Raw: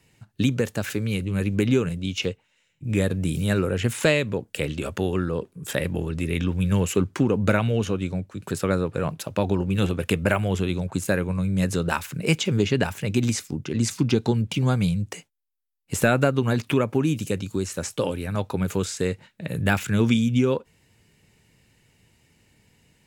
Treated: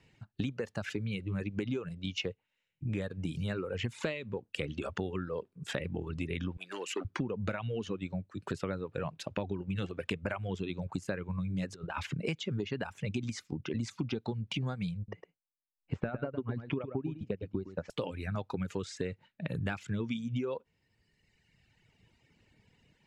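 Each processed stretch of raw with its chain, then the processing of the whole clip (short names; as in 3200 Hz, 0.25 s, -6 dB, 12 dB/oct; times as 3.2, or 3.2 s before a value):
6.57–7.05 bell 600 Hz -12.5 dB 1.1 oct + hard clip -17.5 dBFS + HPF 310 Hz 24 dB/oct
11.74–12.15 high shelf 7000 Hz -9.5 dB + negative-ratio compressor -29 dBFS, ratio -0.5
14.97–17.9 transient shaper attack +5 dB, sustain -7 dB + tape spacing loss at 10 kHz 36 dB + echo 0.109 s -6.5 dB
whole clip: LPF 4500 Hz 12 dB/oct; reverb removal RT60 1.5 s; compressor, threshold -29 dBFS; gain -2.5 dB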